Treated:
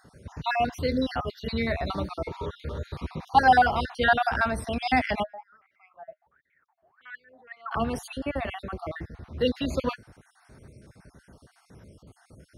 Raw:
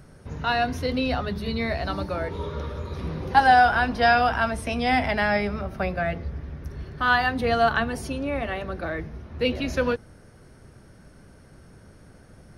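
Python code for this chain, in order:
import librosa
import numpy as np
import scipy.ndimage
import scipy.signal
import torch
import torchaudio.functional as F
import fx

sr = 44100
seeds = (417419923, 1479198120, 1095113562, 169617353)

y = fx.spec_dropout(x, sr, seeds[0], share_pct=44)
y = scipy.signal.sosfilt(scipy.signal.butter(2, 45.0, 'highpass', fs=sr, output='sos'), y)
y = fx.wah_lfo(y, sr, hz=fx.line((5.22, 0.91), (7.71, 2.4)), low_hz=620.0, high_hz=2200.0, q=19.0, at=(5.22, 7.71), fade=0.02)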